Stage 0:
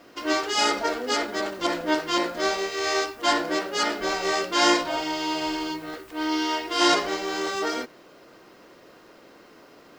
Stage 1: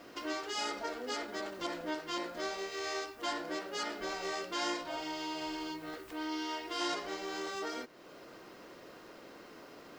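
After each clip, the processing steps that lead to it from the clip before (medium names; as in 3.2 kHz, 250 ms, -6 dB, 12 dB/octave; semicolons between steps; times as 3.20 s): compression 2:1, threshold -43 dBFS, peak gain reduction 15 dB; trim -1.5 dB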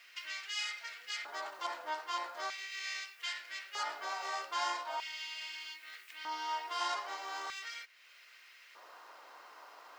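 LFO high-pass square 0.4 Hz 910–2200 Hz; trim -2.5 dB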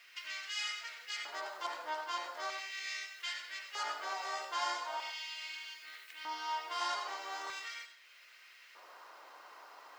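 reverberation RT60 0.55 s, pre-delay 75 ms, DRR 6 dB; trim -1 dB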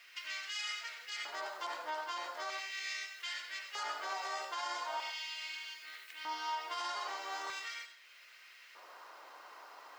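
peak limiter -30.5 dBFS, peak gain reduction 7.5 dB; trim +1 dB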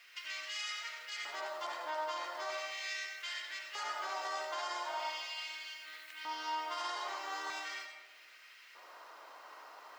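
algorithmic reverb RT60 1.5 s, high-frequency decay 0.35×, pre-delay 45 ms, DRR 5 dB; trim -1 dB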